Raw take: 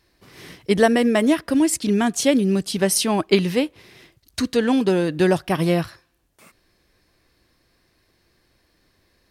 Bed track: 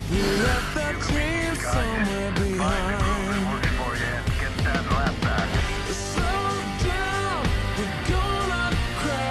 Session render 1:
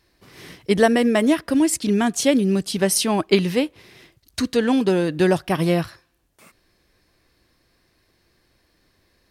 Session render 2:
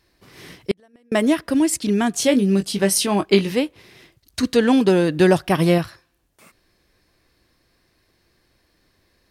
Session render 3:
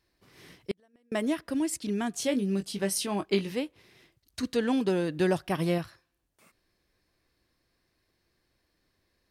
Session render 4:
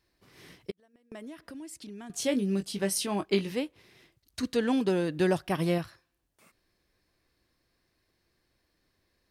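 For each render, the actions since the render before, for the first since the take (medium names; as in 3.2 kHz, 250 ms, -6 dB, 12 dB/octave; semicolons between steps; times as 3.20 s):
no audible change
0.71–1.12 s: inverted gate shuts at -11 dBFS, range -39 dB; 2.12–3.52 s: doubling 20 ms -7.5 dB; 4.43–5.78 s: gain +3 dB
trim -11 dB
0.70–2.10 s: compression 4:1, threshold -43 dBFS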